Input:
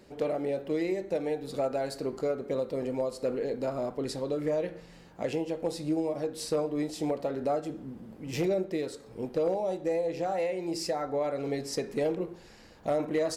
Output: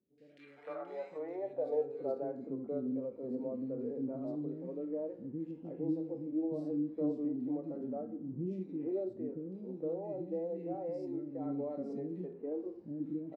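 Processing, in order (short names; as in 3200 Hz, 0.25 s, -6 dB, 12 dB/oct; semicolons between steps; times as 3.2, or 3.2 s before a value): three bands offset in time lows, highs, mids 0.18/0.46 s, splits 320/2200 Hz; harmonic-percussive split percussive -10 dB; band-pass sweep 1700 Hz -> 260 Hz, 0.51–2.52; gain +4 dB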